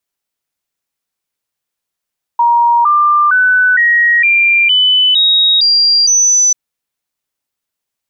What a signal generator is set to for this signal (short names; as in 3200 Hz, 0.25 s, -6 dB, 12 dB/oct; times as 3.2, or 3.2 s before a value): stepped sine 945 Hz up, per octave 3, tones 9, 0.46 s, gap 0.00 s -6.5 dBFS